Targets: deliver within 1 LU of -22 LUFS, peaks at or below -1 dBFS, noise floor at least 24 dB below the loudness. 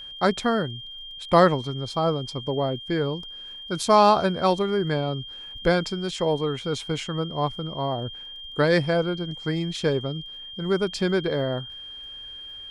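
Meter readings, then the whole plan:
tick rate 26 per s; steady tone 3.2 kHz; tone level -37 dBFS; loudness -24.5 LUFS; peak level -4.5 dBFS; loudness target -22.0 LUFS
-> de-click; band-stop 3.2 kHz, Q 30; trim +2.5 dB

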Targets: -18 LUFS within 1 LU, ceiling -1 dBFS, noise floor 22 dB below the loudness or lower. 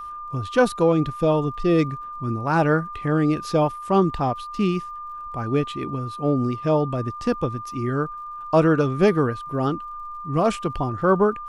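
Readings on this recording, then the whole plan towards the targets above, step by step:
tick rate 57 per s; steady tone 1.2 kHz; tone level -32 dBFS; loudness -22.5 LUFS; peak level -6.0 dBFS; loudness target -18.0 LUFS
-> de-click; band-stop 1.2 kHz, Q 30; trim +4.5 dB

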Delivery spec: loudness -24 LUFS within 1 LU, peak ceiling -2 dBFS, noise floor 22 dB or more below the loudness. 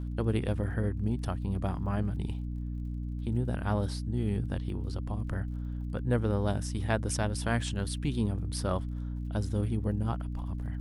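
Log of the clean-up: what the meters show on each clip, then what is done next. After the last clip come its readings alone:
tick rate 36 per s; hum 60 Hz; highest harmonic 300 Hz; hum level -33 dBFS; loudness -32.5 LUFS; peak level -14.5 dBFS; loudness target -24.0 LUFS
-> de-click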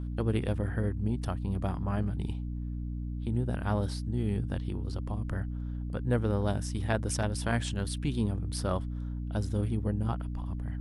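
tick rate 0.093 per s; hum 60 Hz; highest harmonic 300 Hz; hum level -33 dBFS
-> de-hum 60 Hz, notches 5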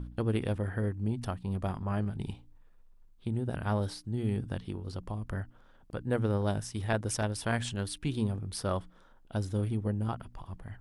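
hum not found; loudness -34.0 LUFS; peak level -15.0 dBFS; loudness target -24.0 LUFS
-> trim +10 dB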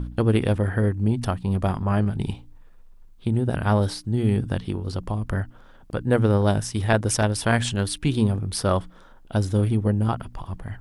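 loudness -24.0 LUFS; peak level -5.0 dBFS; noise floor -49 dBFS

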